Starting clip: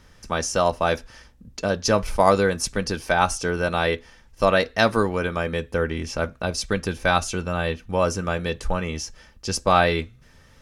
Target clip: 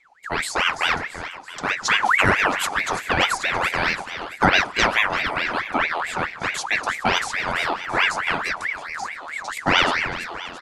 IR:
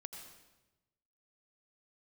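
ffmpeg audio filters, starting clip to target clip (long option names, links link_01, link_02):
-filter_complex "[0:a]agate=range=-13dB:threshold=-42dB:ratio=16:detection=peak,lowshelf=frequency=140:gain=9.5,aecho=1:1:336|672|1008|1344|1680|2016:0.282|0.152|0.0822|0.0444|0.024|0.0129,aphaser=in_gain=1:out_gain=1:delay=4:decay=0.25:speed=0.22:type=triangular,asettb=1/sr,asplit=3[link_01][link_02][link_03];[link_01]atrim=end=8.564[link_04];[link_02]atrim=start=8.56:end=9.57,asetpts=PTS-STARTPTS,afade=type=in:duration=0.004:curve=qsin,afade=type=out:start_time=1.006:duration=0.004:curve=qsin,acrossover=split=950|2500|5400[link_05][link_06][link_07][link_08];[link_05]acompressor=threshold=-26dB:ratio=4[link_09];[link_06]acompressor=threshold=-46dB:ratio=4[link_10];[link_07]acompressor=threshold=-46dB:ratio=4[link_11];[link_08]acompressor=threshold=-39dB:ratio=4[link_12];[link_09][link_10][link_11][link_12]amix=inputs=4:normalize=0[link_13];[link_03]atrim=start=9.566[link_14];[link_04][link_13]acrossfade=duration=0.004:curve1=hsin:curve2=qsin[link_15];[link_15][link_14]acrossfade=duration=0.004:curve1=qsin:curve2=hsin,flanger=delay=1.8:depth=7.6:regen=-77:speed=1.5:shape=triangular,asplit=2[link_16][link_17];[1:a]atrim=start_sample=2205[link_18];[link_17][link_18]afir=irnorm=-1:irlink=0,volume=-12.5dB[link_19];[link_16][link_19]amix=inputs=2:normalize=0,aresample=22050,aresample=44100,aeval=exprs='val(0)*sin(2*PI*1500*n/s+1500*0.5/4.6*sin(2*PI*4.6*n/s))':channel_layout=same,volume=4dB"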